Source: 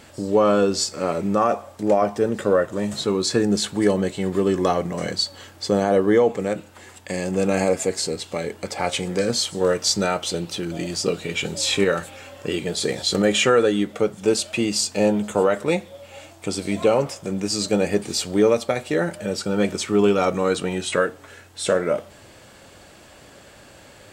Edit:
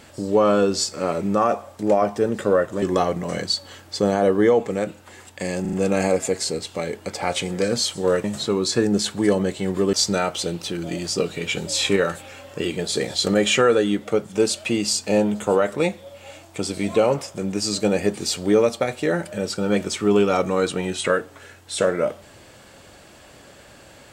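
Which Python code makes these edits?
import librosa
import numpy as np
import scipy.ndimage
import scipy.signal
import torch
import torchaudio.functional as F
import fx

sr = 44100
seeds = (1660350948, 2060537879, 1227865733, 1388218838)

y = fx.edit(x, sr, fx.move(start_s=2.82, length_s=1.69, to_s=9.81),
    fx.stutter(start_s=7.3, slice_s=0.04, count=4), tone=tone)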